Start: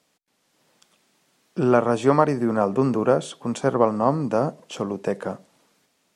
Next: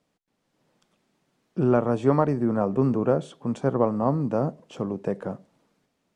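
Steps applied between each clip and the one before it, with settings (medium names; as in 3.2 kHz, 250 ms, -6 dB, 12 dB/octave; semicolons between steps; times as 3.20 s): tilt EQ -2.5 dB/octave; trim -6 dB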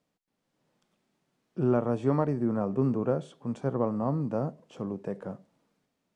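harmonic-percussive split percussive -5 dB; trim -3.5 dB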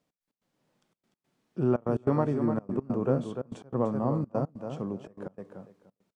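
on a send: feedback delay 296 ms, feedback 19%, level -7.5 dB; on the sum: trance gate "x.x.xxxx" 145 bpm -24 dB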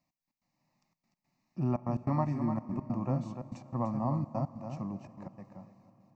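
static phaser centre 2.2 kHz, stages 8; reverberation RT60 5.2 s, pre-delay 36 ms, DRR 16 dB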